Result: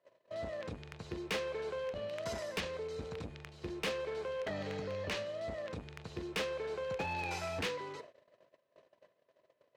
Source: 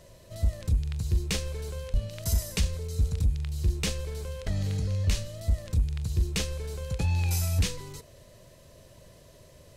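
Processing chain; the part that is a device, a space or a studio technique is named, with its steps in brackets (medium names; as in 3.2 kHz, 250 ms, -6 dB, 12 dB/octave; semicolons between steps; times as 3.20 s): walkie-talkie (band-pass 420–2200 Hz; hard clipper -36.5 dBFS, distortion -13 dB; gate -55 dBFS, range -26 dB); trim +5.5 dB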